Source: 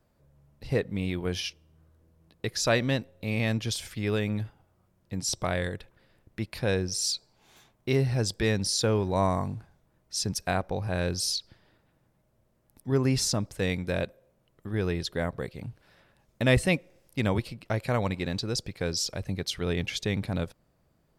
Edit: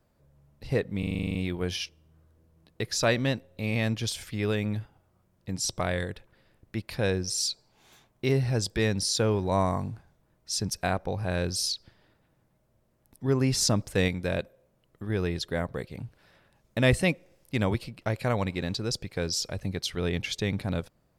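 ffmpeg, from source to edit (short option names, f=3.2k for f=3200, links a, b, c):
-filter_complex "[0:a]asplit=12[a][b][c][d][e][f][g][h][i][j][k][l];[a]atrim=end=1.032[m];[b]atrim=start=0.988:end=1.032[n];[c]atrim=start=0.988:end=1.032[o];[d]atrim=start=0.988:end=1.032[p];[e]atrim=start=0.988:end=1.032[q];[f]atrim=start=0.988:end=1.032[r];[g]atrim=start=0.988:end=1.032[s];[h]atrim=start=0.988:end=1.032[t];[i]atrim=start=0.988:end=1.032[u];[j]atrim=start=0.988:end=13.252[v];[k]atrim=start=13.248:end=13.722,asetpts=PTS-STARTPTS,volume=3.5dB[w];[l]atrim=start=13.718[x];[m][n]acrossfade=d=0.004:c1=hsin:c2=hsin[y];[y][o]acrossfade=d=0.004:c1=hsin:c2=hsin[z];[z][p]acrossfade=d=0.004:c1=hsin:c2=hsin[aa];[aa][q]acrossfade=d=0.004:c1=hsin:c2=hsin[ab];[ab][r]acrossfade=d=0.004:c1=hsin:c2=hsin[ac];[ac][s]acrossfade=d=0.004:c1=hsin:c2=hsin[ad];[ad][t]acrossfade=d=0.004:c1=hsin:c2=hsin[ae];[ae][u]acrossfade=d=0.004:c1=hsin:c2=hsin[af];[af][v]acrossfade=d=0.004:c1=hsin:c2=hsin[ag];[ag][w]acrossfade=d=0.004:c1=hsin:c2=hsin[ah];[ah][x]acrossfade=d=0.004:c1=hsin:c2=hsin"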